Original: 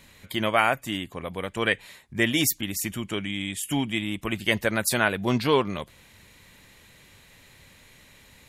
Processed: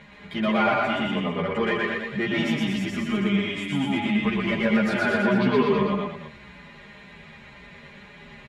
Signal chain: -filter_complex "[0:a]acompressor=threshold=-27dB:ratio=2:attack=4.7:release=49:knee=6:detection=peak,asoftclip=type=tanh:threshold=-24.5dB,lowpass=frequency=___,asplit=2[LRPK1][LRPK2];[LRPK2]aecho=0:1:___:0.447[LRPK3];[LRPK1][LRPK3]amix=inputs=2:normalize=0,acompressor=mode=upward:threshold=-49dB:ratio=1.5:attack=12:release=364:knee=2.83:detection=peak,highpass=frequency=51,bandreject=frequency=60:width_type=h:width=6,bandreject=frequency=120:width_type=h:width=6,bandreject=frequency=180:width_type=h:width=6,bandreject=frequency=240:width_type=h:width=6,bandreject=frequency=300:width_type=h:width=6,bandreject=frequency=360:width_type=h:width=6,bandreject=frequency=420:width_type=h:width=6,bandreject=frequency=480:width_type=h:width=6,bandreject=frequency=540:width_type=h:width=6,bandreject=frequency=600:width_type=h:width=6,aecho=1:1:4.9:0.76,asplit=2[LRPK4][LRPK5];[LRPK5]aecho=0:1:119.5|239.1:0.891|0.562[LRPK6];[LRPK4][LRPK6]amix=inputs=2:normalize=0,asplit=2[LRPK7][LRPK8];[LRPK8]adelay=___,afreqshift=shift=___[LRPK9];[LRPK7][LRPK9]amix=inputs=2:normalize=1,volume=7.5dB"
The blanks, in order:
2300, 208, 10.7, -1.9